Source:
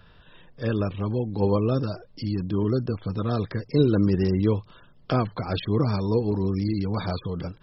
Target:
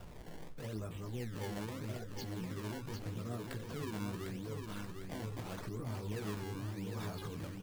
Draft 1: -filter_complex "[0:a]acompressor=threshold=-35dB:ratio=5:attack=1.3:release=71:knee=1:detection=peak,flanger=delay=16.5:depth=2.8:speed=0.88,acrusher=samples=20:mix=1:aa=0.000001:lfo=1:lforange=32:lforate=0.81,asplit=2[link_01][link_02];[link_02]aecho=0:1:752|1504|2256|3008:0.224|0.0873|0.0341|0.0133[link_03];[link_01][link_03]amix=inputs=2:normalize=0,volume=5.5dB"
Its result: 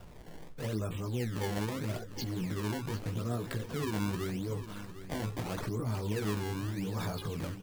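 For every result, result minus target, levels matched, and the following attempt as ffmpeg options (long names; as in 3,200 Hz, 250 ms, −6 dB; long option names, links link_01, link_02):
downward compressor: peak gain reduction −7.5 dB; echo-to-direct −7.5 dB
-filter_complex "[0:a]acompressor=threshold=-44.5dB:ratio=5:attack=1.3:release=71:knee=1:detection=peak,flanger=delay=16.5:depth=2.8:speed=0.88,acrusher=samples=20:mix=1:aa=0.000001:lfo=1:lforange=32:lforate=0.81,asplit=2[link_01][link_02];[link_02]aecho=0:1:752|1504|2256|3008:0.224|0.0873|0.0341|0.0133[link_03];[link_01][link_03]amix=inputs=2:normalize=0,volume=5.5dB"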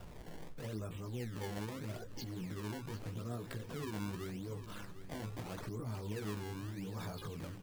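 echo-to-direct −7.5 dB
-filter_complex "[0:a]acompressor=threshold=-44.5dB:ratio=5:attack=1.3:release=71:knee=1:detection=peak,flanger=delay=16.5:depth=2.8:speed=0.88,acrusher=samples=20:mix=1:aa=0.000001:lfo=1:lforange=32:lforate=0.81,asplit=2[link_01][link_02];[link_02]aecho=0:1:752|1504|2256|3008|3760:0.531|0.207|0.0807|0.0315|0.0123[link_03];[link_01][link_03]amix=inputs=2:normalize=0,volume=5.5dB"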